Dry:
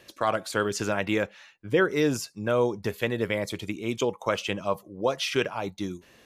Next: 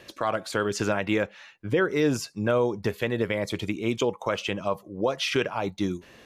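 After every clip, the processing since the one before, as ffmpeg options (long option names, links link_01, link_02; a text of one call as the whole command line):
ffmpeg -i in.wav -af "highshelf=frequency=6200:gain=-7.5,alimiter=limit=-19dB:level=0:latency=1:release=319,volume=5.5dB" out.wav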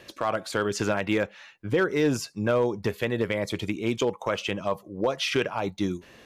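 ffmpeg -i in.wav -af "asoftclip=type=hard:threshold=-15.5dB" out.wav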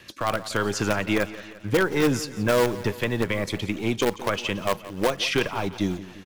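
ffmpeg -i in.wav -filter_complex "[0:a]acrossover=split=380|810|4300[link_01][link_02][link_03][link_04];[link_02]acrusher=bits=5:dc=4:mix=0:aa=0.000001[link_05];[link_01][link_05][link_03][link_04]amix=inputs=4:normalize=0,aecho=1:1:174|348|522|696|870:0.15|0.0853|0.0486|0.0277|0.0158,volume=2.5dB" out.wav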